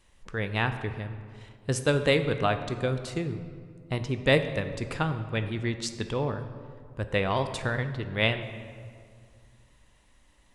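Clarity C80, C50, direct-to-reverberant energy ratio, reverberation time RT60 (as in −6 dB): 11.0 dB, 10.0 dB, 8.5 dB, 2.1 s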